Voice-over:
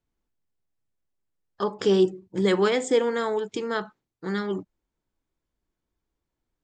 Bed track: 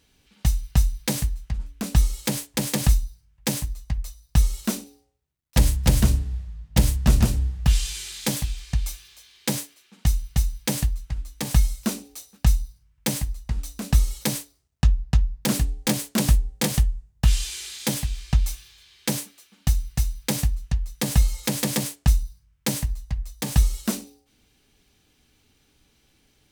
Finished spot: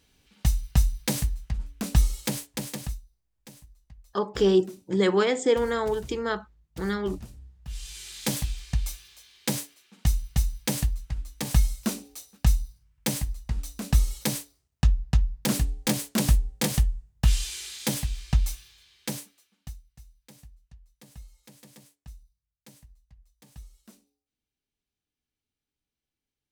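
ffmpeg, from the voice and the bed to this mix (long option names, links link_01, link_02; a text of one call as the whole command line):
ffmpeg -i stem1.wav -i stem2.wav -filter_complex "[0:a]adelay=2550,volume=-0.5dB[link_01];[1:a]volume=19dB,afade=type=out:start_time=2.12:duration=0.91:silence=0.0841395,afade=type=in:start_time=7.66:duration=0.65:silence=0.0891251,afade=type=out:start_time=18.48:duration=1.34:silence=0.0562341[link_02];[link_01][link_02]amix=inputs=2:normalize=0" out.wav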